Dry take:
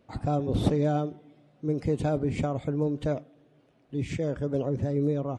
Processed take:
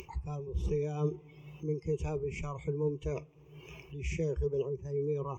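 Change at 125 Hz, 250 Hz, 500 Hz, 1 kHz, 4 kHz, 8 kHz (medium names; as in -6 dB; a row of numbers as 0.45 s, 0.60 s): -6.5 dB, -11.5 dB, -4.0 dB, -10.5 dB, -9.5 dB, -3.0 dB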